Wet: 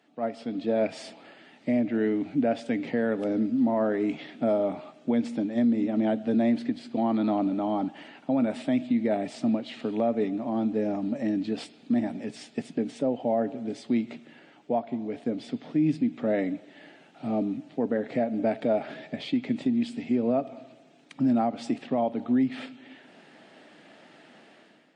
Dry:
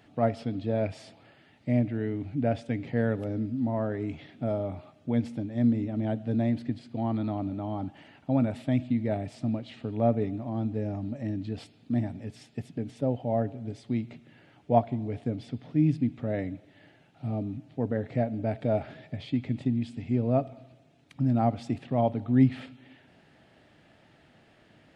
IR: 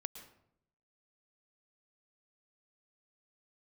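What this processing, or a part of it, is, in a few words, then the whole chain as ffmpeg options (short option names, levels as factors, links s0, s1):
low-bitrate web radio: -filter_complex "[0:a]highpass=f=200:w=0.5412,highpass=f=200:w=1.3066,asettb=1/sr,asplit=3[s0][s1][s2];[s0]atrim=end=9.794[s3];[s1]atrim=start=9.79:end=10.28,asetpts=PTS-STARTPTS,afade=t=in:d=0.004:c=qsin,afade=t=out:st=0.486:d=0.004:c=qsin,highshelf=f=2200:g=5[s4];[s2]atrim=start=10.276[s5];[s3][s4]acrossfade=d=0.004:c1=hsin:c2=qsin[s6];[s6][s5]acrossfade=d=0.004:c1=qsin:c2=hsin,dynaudnorm=f=210:g=5:m=4.47,alimiter=limit=0.282:level=0:latency=1:release=167,volume=0.562" -ar 22050 -c:a libmp3lame -b:a 40k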